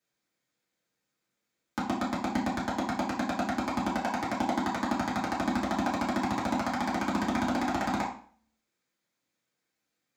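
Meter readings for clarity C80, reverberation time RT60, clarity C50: 10.5 dB, 0.50 s, 6.5 dB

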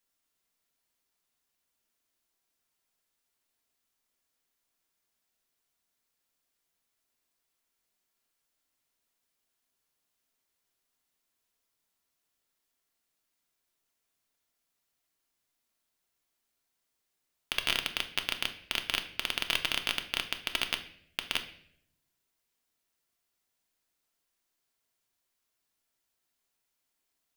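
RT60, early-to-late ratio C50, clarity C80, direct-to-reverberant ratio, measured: 0.65 s, 12.0 dB, 15.5 dB, 6.0 dB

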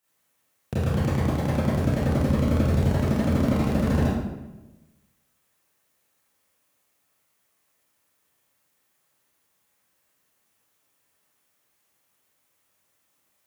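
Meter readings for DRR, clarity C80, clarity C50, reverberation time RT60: −10.5 dB, 2.0 dB, −2.0 dB, 1.1 s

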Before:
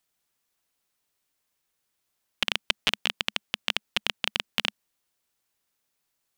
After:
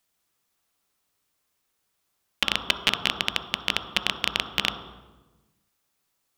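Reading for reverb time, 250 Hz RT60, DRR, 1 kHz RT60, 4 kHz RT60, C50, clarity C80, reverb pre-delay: 1.2 s, 1.6 s, 5.0 dB, 1.1 s, 0.85 s, 7.0 dB, 9.5 dB, 8 ms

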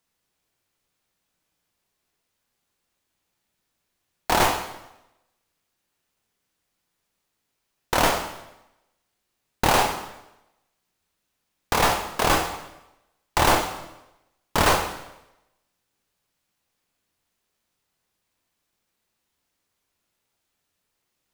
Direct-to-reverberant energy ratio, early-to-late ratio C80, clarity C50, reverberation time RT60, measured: 4.5 dB, 10.5 dB, 8.5 dB, 0.95 s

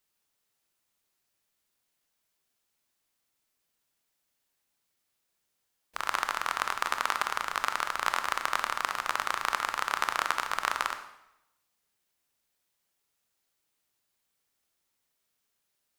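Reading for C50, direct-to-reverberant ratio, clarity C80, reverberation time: 9.5 dB, 7.5 dB, 12.0 dB, 0.85 s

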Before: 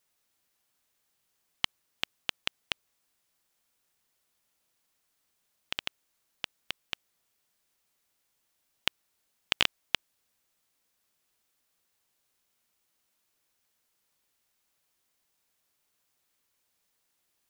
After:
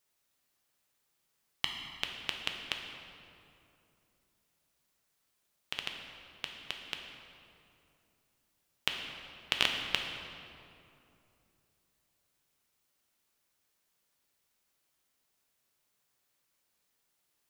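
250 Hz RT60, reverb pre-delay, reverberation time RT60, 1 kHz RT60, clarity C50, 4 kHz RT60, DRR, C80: 3.3 s, 3 ms, 2.7 s, 2.5 s, 4.0 dB, 1.7 s, 2.0 dB, 5.0 dB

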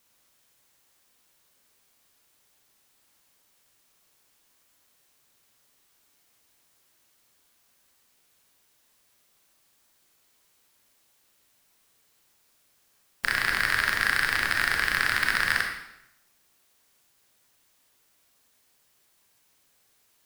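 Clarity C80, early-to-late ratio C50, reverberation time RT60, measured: 7.0 dB, 4.5 dB, 0.85 s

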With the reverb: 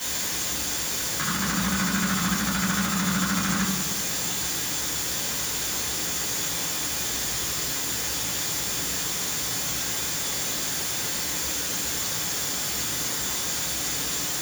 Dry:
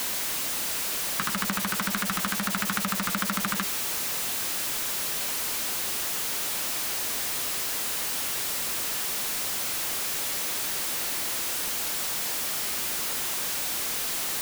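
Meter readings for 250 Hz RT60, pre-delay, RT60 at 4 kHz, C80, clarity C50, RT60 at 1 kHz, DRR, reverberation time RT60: 1.7 s, 3 ms, 0.75 s, 6.0 dB, 3.5 dB, 1.0 s, −7.0 dB, 1.2 s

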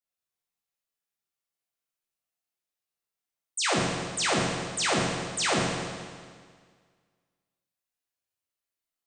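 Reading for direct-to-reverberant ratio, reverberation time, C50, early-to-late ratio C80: −5.5 dB, 1.8 s, −1.0 dB, 1.0 dB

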